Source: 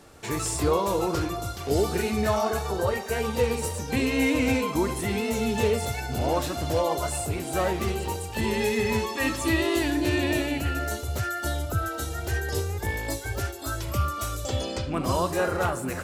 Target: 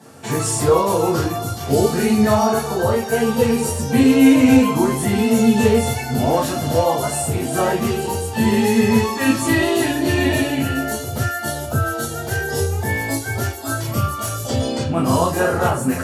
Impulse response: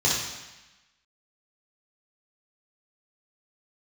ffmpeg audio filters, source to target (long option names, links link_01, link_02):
-filter_complex "[1:a]atrim=start_sample=2205,afade=type=out:start_time=0.15:duration=0.01,atrim=end_sample=7056,asetrate=74970,aresample=44100[link_01];[0:a][link_01]afir=irnorm=-1:irlink=0,volume=-2.5dB"